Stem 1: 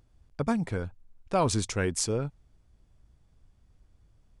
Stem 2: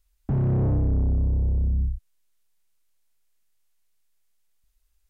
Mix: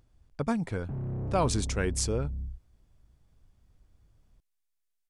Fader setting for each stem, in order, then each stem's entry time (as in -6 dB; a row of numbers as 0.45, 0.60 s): -1.5, -12.0 dB; 0.00, 0.60 s